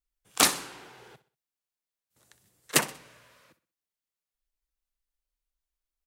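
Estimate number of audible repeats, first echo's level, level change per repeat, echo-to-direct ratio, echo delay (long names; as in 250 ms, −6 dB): 3, −16.0 dB, −9.0 dB, −15.5 dB, 63 ms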